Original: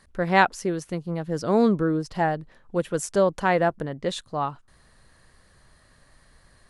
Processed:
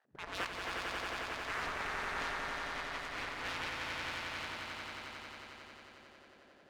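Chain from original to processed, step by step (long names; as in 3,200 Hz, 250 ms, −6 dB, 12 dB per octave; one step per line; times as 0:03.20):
running median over 41 samples
spectral tilt −2.5 dB per octave
transient designer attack 0 dB, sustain +8 dB
gate on every frequency bin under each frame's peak −30 dB weak
harmonic generator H 3 −18 dB, 4 −23 dB, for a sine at −33 dBFS
high-shelf EQ 7,600 Hz −6.5 dB
on a send: echo that builds up and dies away 90 ms, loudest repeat 5, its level −4 dB
on the sum: highs frequency-modulated by the lows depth 0.54 ms
level +2.5 dB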